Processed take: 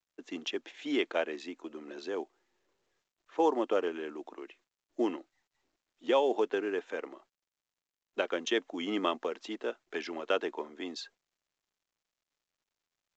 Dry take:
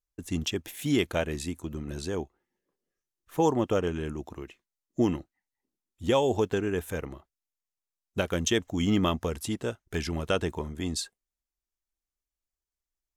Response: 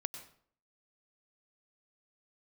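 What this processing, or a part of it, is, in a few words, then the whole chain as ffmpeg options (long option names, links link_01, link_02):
telephone: -af "highpass=frequency=260:width=0.5412,highpass=frequency=260:width=1.3066,highpass=290,lowpass=3500,volume=-1.5dB" -ar 16000 -c:a pcm_mulaw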